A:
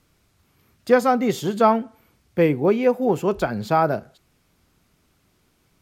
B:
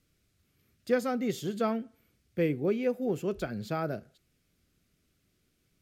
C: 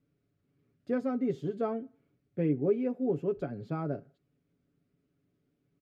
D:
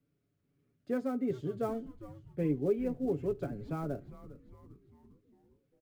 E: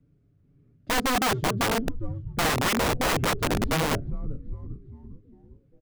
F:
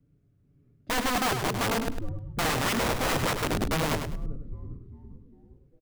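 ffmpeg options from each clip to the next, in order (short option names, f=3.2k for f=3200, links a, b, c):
-af "equalizer=f=920:w=1.9:g=-14,volume=-8.5dB"
-af "bandpass=f=290:t=q:w=0.57:csg=0,aecho=1:1:7.1:0.62"
-filter_complex "[0:a]acrossover=split=300|660[a][b][c];[c]acrusher=bits=4:mode=log:mix=0:aa=0.000001[d];[a][b][d]amix=inputs=3:normalize=0,asplit=6[e][f][g][h][i][j];[f]adelay=402,afreqshift=-130,volume=-15dB[k];[g]adelay=804,afreqshift=-260,volume=-20.4dB[l];[h]adelay=1206,afreqshift=-390,volume=-25.7dB[m];[i]adelay=1608,afreqshift=-520,volume=-31.1dB[n];[j]adelay=2010,afreqshift=-650,volume=-36.4dB[o];[e][k][l][m][n][o]amix=inputs=6:normalize=0,volume=-2.5dB"
-af "aemphasis=mode=reproduction:type=riaa,aeval=exprs='(mod(16.8*val(0)+1,2)-1)/16.8':c=same,volume=5.5dB"
-af "aecho=1:1:102|204|306:0.447|0.112|0.0279,volume=-3dB"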